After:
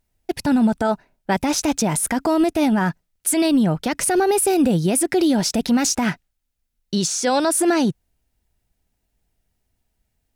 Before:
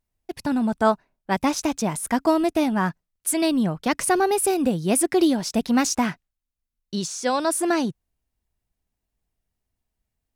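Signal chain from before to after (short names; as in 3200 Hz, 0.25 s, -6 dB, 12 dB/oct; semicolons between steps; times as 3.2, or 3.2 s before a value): notch 1100 Hz, Q 7.3; limiter -19 dBFS, peak gain reduction 11.5 dB; gain +8.5 dB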